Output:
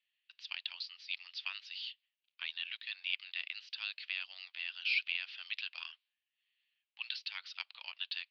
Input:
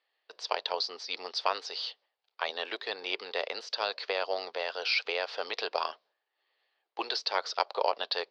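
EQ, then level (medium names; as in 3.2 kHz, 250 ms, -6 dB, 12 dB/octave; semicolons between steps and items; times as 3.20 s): ladder high-pass 2.4 kHz, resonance 55%; distance through air 180 m; treble shelf 4 kHz -9.5 dB; +8.0 dB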